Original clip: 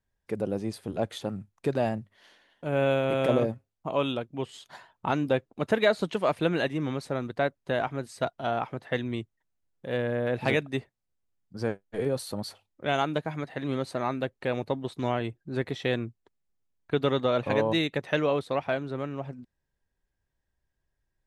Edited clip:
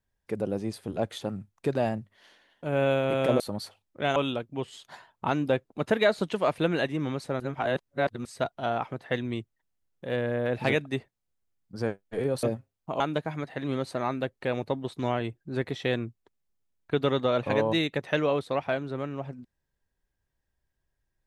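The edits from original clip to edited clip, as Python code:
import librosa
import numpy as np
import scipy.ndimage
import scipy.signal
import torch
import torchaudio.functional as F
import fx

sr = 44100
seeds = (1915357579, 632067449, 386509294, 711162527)

y = fx.edit(x, sr, fx.swap(start_s=3.4, length_s=0.57, other_s=12.24, other_length_s=0.76),
    fx.reverse_span(start_s=7.21, length_s=0.85), tone=tone)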